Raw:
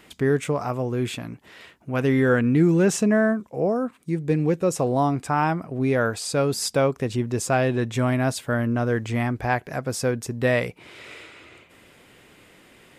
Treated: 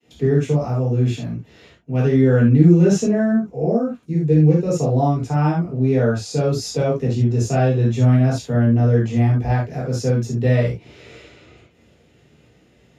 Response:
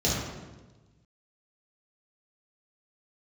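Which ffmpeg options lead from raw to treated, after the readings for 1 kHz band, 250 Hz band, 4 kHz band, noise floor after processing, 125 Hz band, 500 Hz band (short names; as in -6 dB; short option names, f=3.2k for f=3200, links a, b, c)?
-1.0 dB, +5.0 dB, -1.5 dB, -55 dBFS, +10.0 dB, +2.5 dB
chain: -filter_complex "[0:a]agate=range=-33dB:threshold=-47dB:ratio=3:detection=peak[a];[1:a]atrim=start_sample=2205,atrim=end_sample=3969[b];[a][b]afir=irnorm=-1:irlink=0,volume=-13dB"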